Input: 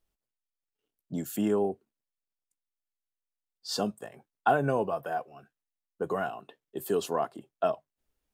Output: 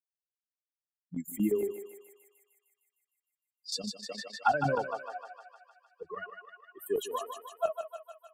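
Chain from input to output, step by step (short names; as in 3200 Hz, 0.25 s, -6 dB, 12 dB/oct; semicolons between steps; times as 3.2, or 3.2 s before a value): per-bin expansion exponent 3; HPF 120 Hz 12 dB/oct; chopper 8.6 Hz, depth 65%, duty 85%; on a send: thinning echo 0.153 s, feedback 70%, high-pass 620 Hz, level -6 dB; 4.09–4.78 on the sum: three-band squash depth 70%; gain +2.5 dB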